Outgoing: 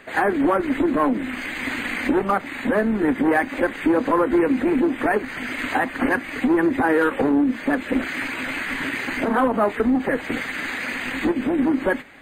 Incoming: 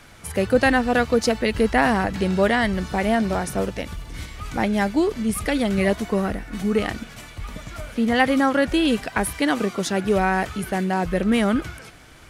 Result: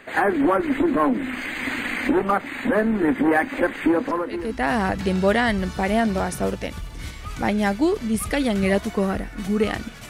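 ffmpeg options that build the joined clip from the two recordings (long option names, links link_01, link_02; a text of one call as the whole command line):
ffmpeg -i cue0.wav -i cue1.wav -filter_complex "[0:a]apad=whole_dur=10.09,atrim=end=10.09,atrim=end=4.88,asetpts=PTS-STARTPTS[link_01];[1:a]atrim=start=1.03:end=7.24,asetpts=PTS-STARTPTS[link_02];[link_01][link_02]acrossfade=duration=1:curve1=qua:curve2=qua" out.wav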